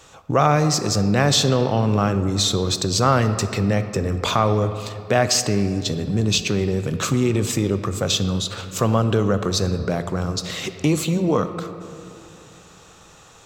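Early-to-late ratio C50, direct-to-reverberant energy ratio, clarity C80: 10.5 dB, 9.5 dB, 11.5 dB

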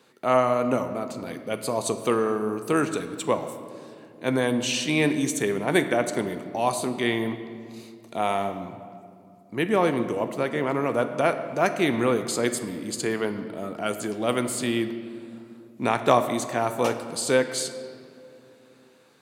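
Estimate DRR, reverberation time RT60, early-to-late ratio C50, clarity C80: 8.0 dB, 2.7 s, 10.0 dB, 11.0 dB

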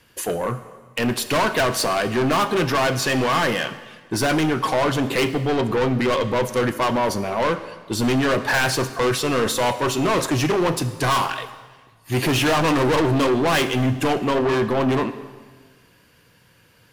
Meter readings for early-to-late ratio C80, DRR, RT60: 14.0 dB, 11.0 dB, 1.5 s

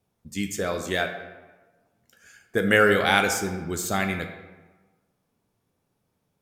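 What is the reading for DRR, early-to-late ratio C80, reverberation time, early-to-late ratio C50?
5.5 dB, 9.5 dB, 1.3 s, 8.0 dB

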